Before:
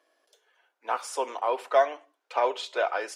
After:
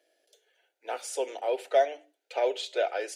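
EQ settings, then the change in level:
mains-hum notches 60/120/180/240/300 Hz
phaser with its sweep stopped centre 450 Hz, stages 4
notch filter 5,300 Hz, Q 16
+1.5 dB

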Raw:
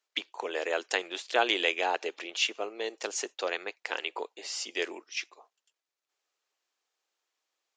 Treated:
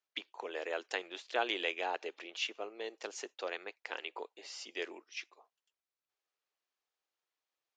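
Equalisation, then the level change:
high-frequency loss of the air 72 metres
−7.0 dB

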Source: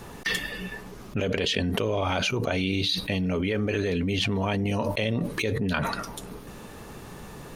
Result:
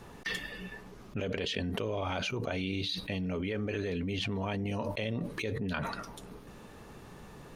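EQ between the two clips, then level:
high-shelf EQ 7,500 Hz −7 dB
−7.5 dB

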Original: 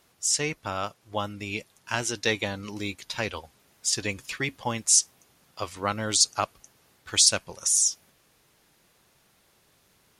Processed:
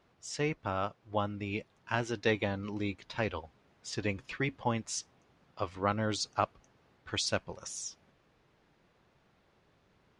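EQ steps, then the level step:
head-to-tape spacing loss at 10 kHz 28 dB
0.0 dB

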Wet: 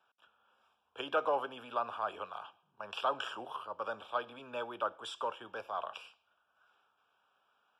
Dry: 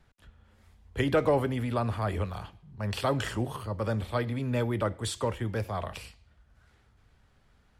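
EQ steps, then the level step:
Savitzky-Golay smoothing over 25 samples
high-pass filter 940 Hz 12 dB per octave
Butterworth band-reject 2,000 Hz, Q 1.8
+2.0 dB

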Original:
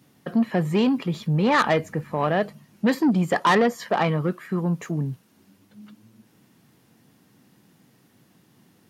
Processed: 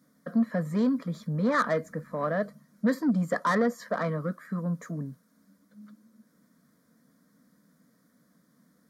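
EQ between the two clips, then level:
high-shelf EQ 6,500 Hz −4 dB
phaser with its sweep stopped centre 550 Hz, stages 8
−3.5 dB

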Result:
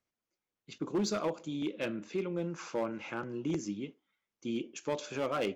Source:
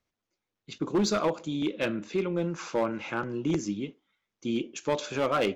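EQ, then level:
parametric band 3,800 Hz −3.5 dB 0.29 octaves
dynamic equaliser 1,300 Hz, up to −3 dB, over −37 dBFS, Q 0.72
low-shelf EQ 67 Hz −8.5 dB
−5.0 dB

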